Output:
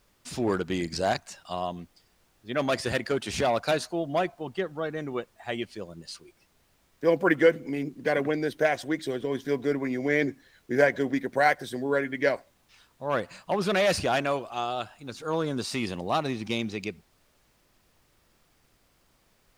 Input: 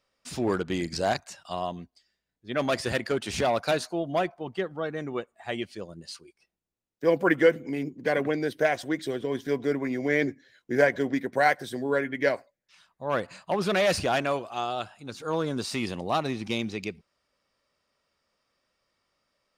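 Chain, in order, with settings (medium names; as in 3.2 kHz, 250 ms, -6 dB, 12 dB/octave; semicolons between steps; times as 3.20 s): added noise pink -66 dBFS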